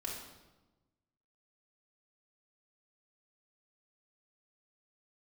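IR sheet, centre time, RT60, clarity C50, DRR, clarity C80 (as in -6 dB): 53 ms, 1.1 s, 2.0 dB, -4.5 dB, 5.5 dB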